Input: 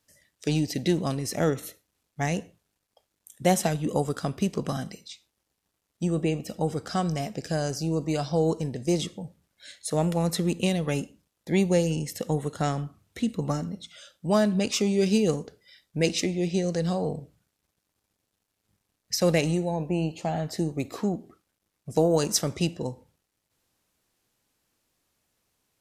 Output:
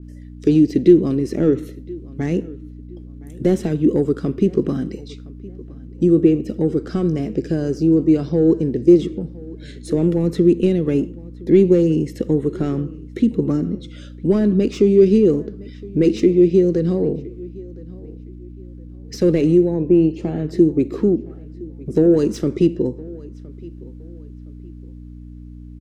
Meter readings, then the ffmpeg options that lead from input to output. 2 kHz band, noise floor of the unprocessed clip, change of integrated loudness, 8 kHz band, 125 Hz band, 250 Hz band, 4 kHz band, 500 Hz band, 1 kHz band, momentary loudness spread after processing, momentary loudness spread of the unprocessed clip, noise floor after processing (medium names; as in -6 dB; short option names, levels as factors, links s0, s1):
-3.5 dB, -80 dBFS, +9.5 dB, under -10 dB, +6.5 dB, +12.0 dB, no reading, +10.0 dB, -7.0 dB, 21 LU, 13 LU, -37 dBFS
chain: -filter_complex "[0:a]asplit=2[s0][s1];[s1]highpass=f=720:p=1,volume=7.08,asoftclip=type=tanh:threshold=0.422[s2];[s0][s2]amix=inputs=2:normalize=0,lowpass=f=1700:p=1,volume=0.501,asplit=2[s3][s4];[s4]acompressor=threshold=0.0224:ratio=6,volume=0.891[s5];[s3][s5]amix=inputs=2:normalize=0,aeval=exprs='val(0)+0.01*(sin(2*PI*60*n/s)+sin(2*PI*2*60*n/s)/2+sin(2*PI*3*60*n/s)/3+sin(2*PI*4*60*n/s)/4+sin(2*PI*5*60*n/s)/5)':c=same,lowshelf=f=510:t=q:w=3:g=12.5,asplit=2[s6][s7];[s7]adelay=1015,lowpass=f=3100:p=1,volume=0.0841,asplit=2[s8][s9];[s9]adelay=1015,lowpass=f=3100:p=1,volume=0.32[s10];[s8][s10]amix=inputs=2:normalize=0[s11];[s6][s11]amix=inputs=2:normalize=0,adynamicequalizer=threshold=0.0224:dfrequency=3200:dqfactor=0.7:tfrequency=3200:tqfactor=0.7:attack=5:release=100:ratio=0.375:range=1.5:mode=cutabove:tftype=highshelf,volume=0.355"